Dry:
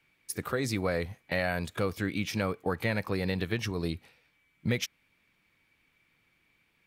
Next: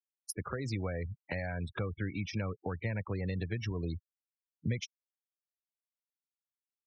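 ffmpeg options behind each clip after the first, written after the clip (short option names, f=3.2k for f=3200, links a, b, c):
-filter_complex "[0:a]acrossover=split=110[a][b];[b]acompressor=threshold=-40dB:ratio=4[c];[a][c]amix=inputs=2:normalize=0,afftfilt=real='re*gte(hypot(re,im),0.00794)':imag='im*gte(hypot(re,im),0.00794)':win_size=1024:overlap=0.75,volume=3dB"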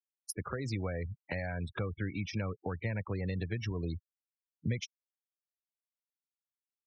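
-af anull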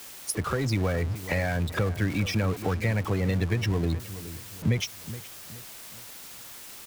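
-filter_complex "[0:a]aeval=exprs='val(0)+0.5*0.0106*sgn(val(0))':c=same,asplit=2[a][b];[b]adelay=421,lowpass=f=2k:p=1,volume=-14dB,asplit=2[c][d];[d]adelay=421,lowpass=f=2k:p=1,volume=0.39,asplit=2[e][f];[f]adelay=421,lowpass=f=2k:p=1,volume=0.39,asplit=2[g][h];[h]adelay=421,lowpass=f=2k:p=1,volume=0.39[i];[a][c][e][g][i]amix=inputs=5:normalize=0,volume=7.5dB"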